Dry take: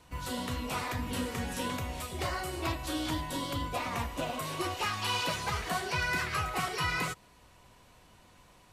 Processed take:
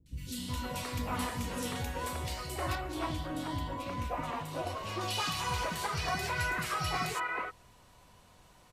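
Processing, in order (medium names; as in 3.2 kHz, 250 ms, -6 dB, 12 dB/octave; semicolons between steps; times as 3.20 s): 2.69–4.95 s: treble shelf 3 kHz -9.5 dB; three bands offset in time lows, highs, mids 60/370 ms, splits 310/2300 Hz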